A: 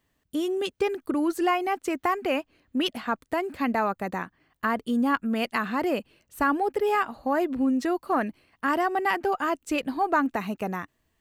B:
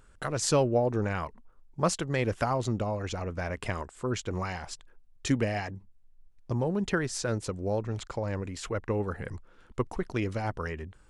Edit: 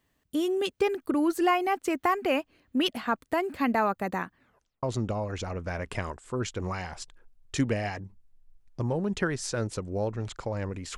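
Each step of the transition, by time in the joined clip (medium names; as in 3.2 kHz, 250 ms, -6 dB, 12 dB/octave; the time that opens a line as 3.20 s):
A
4.36 s: tape stop 0.47 s
4.83 s: go over to B from 2.54 s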